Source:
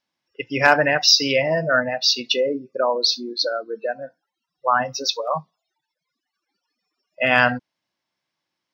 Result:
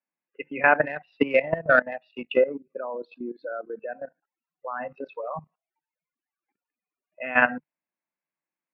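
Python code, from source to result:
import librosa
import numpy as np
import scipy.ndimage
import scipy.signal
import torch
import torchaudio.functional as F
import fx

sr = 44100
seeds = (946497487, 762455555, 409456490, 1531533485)

y = scipy.signal.sosfilt(scipy.signal.cheby1(5, 1.0, [150.0, 2600.0], 'bandpass', fs=sr, output='sos'), x)
y = fx.transient(y, sr, attack_db=12, sustain_db=-10, at=(0.85, 2.7), fade=0.02)
y = fx.level_steps(y, sr, step_db=16)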